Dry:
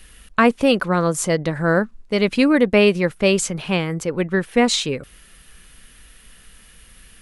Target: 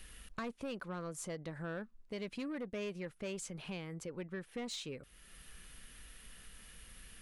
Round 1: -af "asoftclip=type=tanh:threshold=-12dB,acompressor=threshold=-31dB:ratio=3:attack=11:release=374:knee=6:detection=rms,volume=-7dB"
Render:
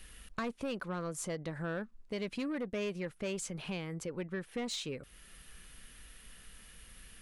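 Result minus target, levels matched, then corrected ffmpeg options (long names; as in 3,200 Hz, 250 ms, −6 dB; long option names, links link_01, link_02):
downward compressor: peak gain reduction −4.5 dB
-af "asoftclip=type=tanh:threshold=-12dB,acompressor=threshold=-37.5dB:ratio=3:attack=11:release=374:knee=6:detection=rms,volume=-7dB"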